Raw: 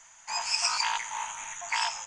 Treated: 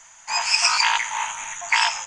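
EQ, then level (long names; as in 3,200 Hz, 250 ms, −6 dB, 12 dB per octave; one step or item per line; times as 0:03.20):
dynamic equaliser 2,200 Hz, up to +6 dB, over −41 dBFS, Q 0.72
+6.0 dB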